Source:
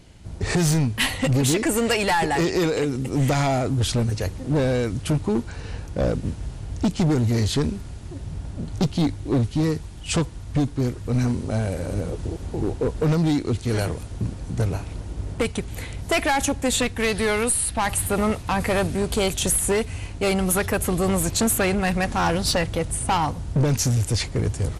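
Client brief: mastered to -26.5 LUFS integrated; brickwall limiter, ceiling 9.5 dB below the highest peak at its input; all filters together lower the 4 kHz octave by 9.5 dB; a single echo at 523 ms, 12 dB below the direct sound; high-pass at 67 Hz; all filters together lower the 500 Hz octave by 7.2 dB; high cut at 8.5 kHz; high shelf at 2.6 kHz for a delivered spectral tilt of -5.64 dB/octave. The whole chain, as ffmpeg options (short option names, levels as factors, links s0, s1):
-af "highpass=67,lowpass=8500,equalizer=f=500:t=o:g=-9,highshelf=f=2600:g=-5,equalizer=f=4000:t=o:g=-8,alimiter=limit=0.0708:level=0:latency=1,aecho=1:1:523:0.251,volume=1.78"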